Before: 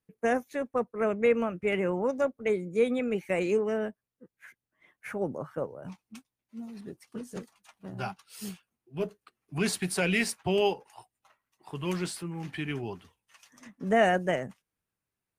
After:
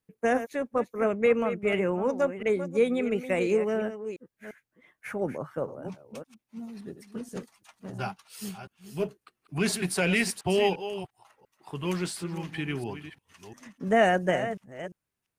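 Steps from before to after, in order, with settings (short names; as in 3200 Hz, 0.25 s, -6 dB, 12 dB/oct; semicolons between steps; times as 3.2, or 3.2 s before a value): reverse delay 0.347 s, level -11 dB; gain +1.5 dB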